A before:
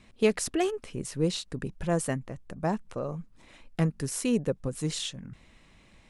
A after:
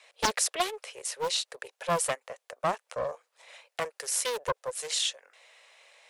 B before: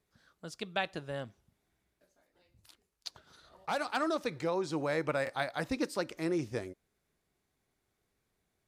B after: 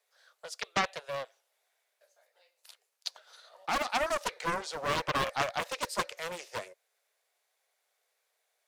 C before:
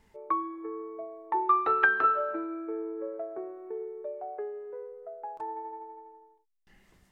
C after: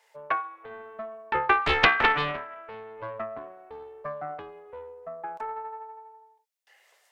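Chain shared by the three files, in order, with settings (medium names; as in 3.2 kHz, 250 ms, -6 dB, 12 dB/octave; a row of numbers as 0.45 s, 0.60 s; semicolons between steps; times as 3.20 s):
steep high-pass 500 Hz 48 dB/octave; peaking EQ 1.1 kHz -4 dB 1.1 oct; loudspeaker Doppler distortion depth 0.72 ms; trim +6 dB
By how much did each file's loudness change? -0.5 LU, +1.5 LU, +4.0 LU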